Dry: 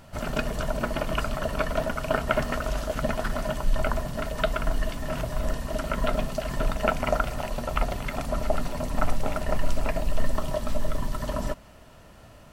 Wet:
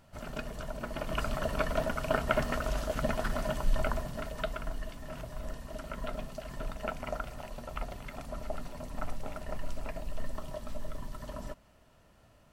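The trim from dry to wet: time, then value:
0.82 s -11 dB
1.29 s -4 dB
3.71 s -4 dB
4.82 s -12 dB

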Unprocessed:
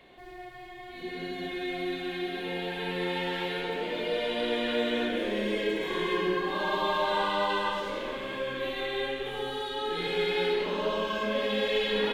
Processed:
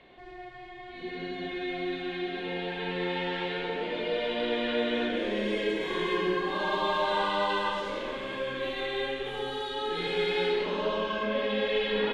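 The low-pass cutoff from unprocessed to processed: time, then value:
4.87 s 4.5 kHz
5.62 s 9.1 kHz
10.39 s 9.1 kHz
11.26 s 3.6 kHz

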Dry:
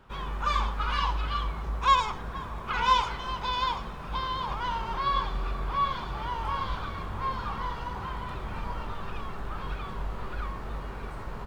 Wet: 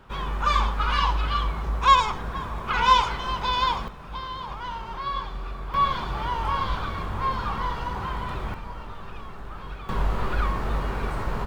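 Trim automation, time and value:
+5 dB
from 3.88 s -2.5 dB
from 5.74 s +5 dB
from 8.54 s -2.5 dB
from 9.89 s +9.5 dB

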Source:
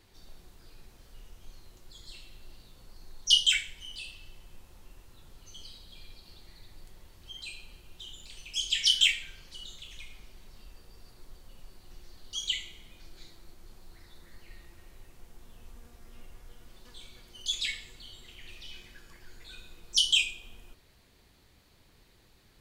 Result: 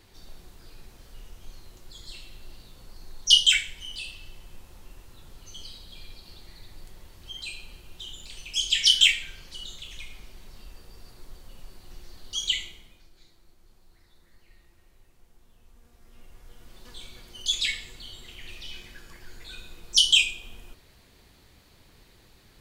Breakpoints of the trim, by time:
12.63 s +5 dB
13.10 s -7 dB
15.67 s -7 dB
16.90 s +5.5 dB

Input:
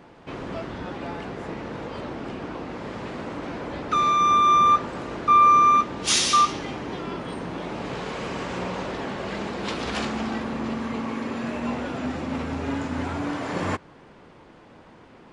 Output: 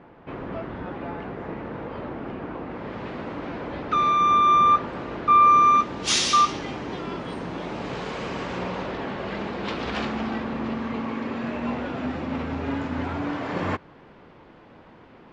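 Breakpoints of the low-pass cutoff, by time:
2.65 s 2.2 kHz
3.06 s 3.7 kHz
5.38 s 3.7 kHz
5.83 s 7.2 kHz
8.09 s 7.2 kHz
8.99 s 3.9 kHz

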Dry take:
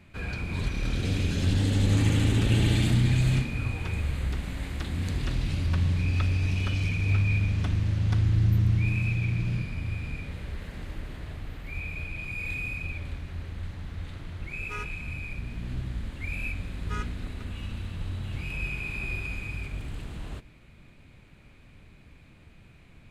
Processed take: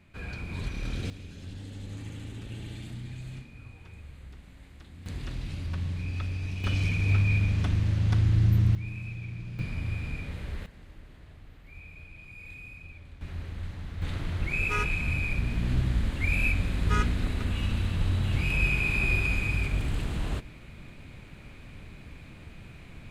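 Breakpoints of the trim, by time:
-4.5 dB
from 1.10 s -17 dB
from 5.06 s -7 dB
from 6.64 s +0.5 dB
from 8.75 s -10.5 dB
from 9.59 s 0 dB
from 10.66 s -12 dB
from 13.21 s -0.5 dB
from 14.02 s +7 dB

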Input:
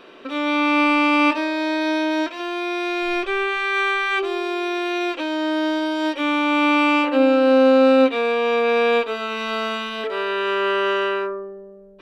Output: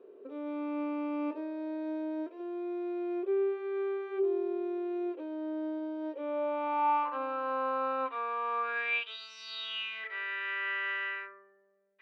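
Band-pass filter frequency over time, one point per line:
band-pass filter, Q 7
6.00 s 420 Hz
7.15 s 1.1 kHz
8.58 s 1.1 kHz
9.34 s 5.6 kHz
10.03 s 2 kHz

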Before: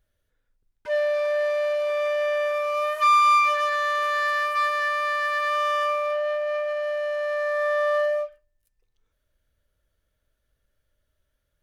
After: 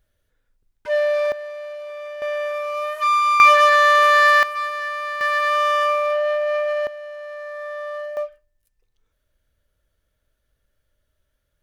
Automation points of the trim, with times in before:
+4 dB
from 1.32 s -8.5 dB
from 2.22 s -0.5 dB
from 3.40 s +10.5 dB
from 4.43 s -2 dB
from 5.21 s +5 dB
from 6.87 s -7.5 dB
from 8.17 s +2.5 dB

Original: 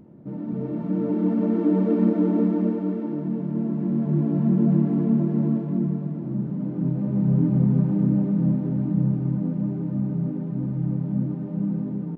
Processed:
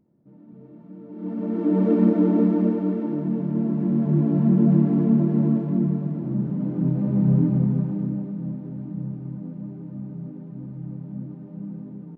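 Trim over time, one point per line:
1.09 s -17 dB
1.28 s -8 dB
1.85 s +2 dB
7.31 s +2 dB
8.37 s -9 dB

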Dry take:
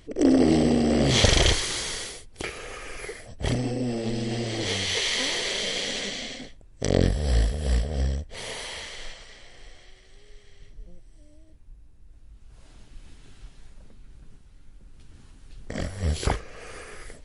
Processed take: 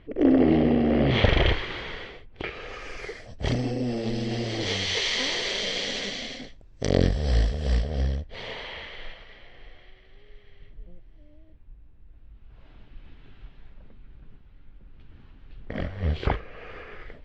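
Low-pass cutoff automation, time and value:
low-pass 24 dB/octave
2.30 s 2.9 kHz
2.87 s 5.9 kHz
7.71 s 5.9 kHz
8.75 s 3.3 kHz

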